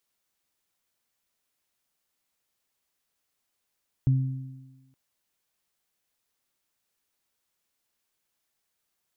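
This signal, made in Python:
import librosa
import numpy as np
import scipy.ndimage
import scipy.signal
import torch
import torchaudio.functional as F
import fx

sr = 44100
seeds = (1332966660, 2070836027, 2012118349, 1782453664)

y = fx.additive(sr, length_s=0.87, hz=132.0, level_db=-16.5, upper_db=(-14,), decay_s=1.14, upper_decays_s=(1.47,))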